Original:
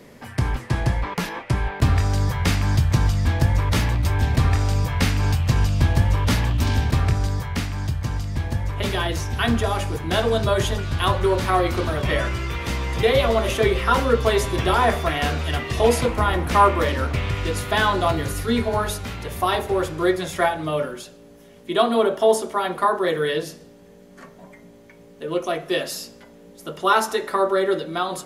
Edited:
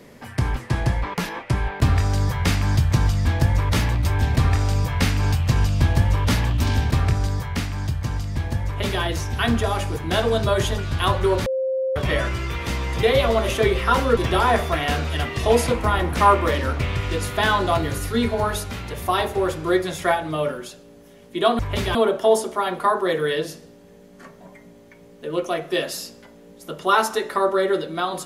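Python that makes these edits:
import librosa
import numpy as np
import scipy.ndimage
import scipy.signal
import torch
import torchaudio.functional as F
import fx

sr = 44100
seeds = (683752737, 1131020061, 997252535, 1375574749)

y = fx.edit(x, sr, fx.duplicate(start_s=8.66, length_s=0.36, to_s=21.93),
    fx.bleep(start_s=11.46, length_s=0.5, hz=526.0, db=-20.0),
    fx.cut(start_s=14.17, length_s=0.34), tone=tone)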